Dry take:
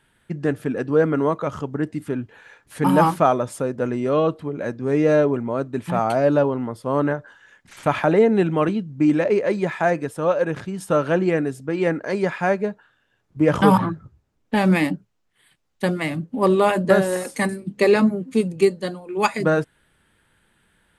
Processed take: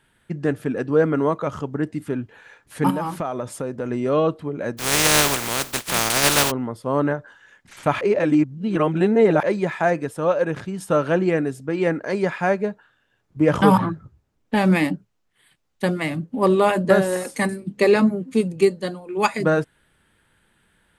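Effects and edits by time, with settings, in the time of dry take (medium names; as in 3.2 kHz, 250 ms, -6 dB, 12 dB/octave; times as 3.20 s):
2.90–3.91 s: compression, threshold -22 dBFS
4.77–6.50 s: spectral contrast reduction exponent 0.21
8.01–9.43 s: reverse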